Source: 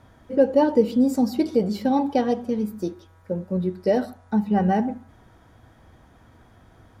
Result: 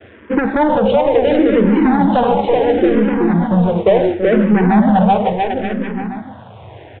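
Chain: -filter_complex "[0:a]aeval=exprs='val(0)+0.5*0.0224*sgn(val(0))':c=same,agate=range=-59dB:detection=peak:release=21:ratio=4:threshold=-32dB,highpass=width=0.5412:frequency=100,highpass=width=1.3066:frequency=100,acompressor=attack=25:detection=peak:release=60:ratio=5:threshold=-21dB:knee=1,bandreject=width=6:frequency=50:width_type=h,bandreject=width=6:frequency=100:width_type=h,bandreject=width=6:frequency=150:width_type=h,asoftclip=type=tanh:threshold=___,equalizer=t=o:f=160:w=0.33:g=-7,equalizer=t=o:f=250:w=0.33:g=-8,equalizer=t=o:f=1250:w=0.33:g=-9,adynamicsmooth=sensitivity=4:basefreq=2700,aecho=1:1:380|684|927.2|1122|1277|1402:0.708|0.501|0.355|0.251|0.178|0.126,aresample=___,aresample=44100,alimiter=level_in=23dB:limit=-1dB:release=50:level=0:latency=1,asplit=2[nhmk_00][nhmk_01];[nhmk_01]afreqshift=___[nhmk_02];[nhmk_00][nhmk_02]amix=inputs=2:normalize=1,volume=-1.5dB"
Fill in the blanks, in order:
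-24dB, 8000, -0.71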